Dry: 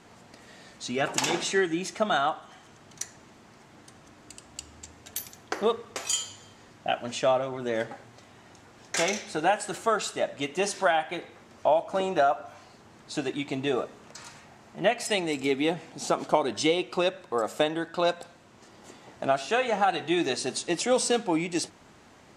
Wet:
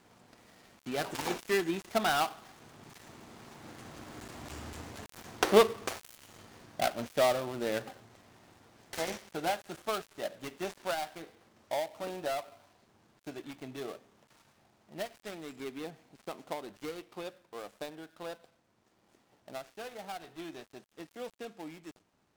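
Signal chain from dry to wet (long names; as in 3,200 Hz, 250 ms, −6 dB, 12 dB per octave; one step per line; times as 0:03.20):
gap after every zero crossing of 0.18 ms
source passing by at 0:04.60, 9 m/s, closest 7.4 metres
level +8 dB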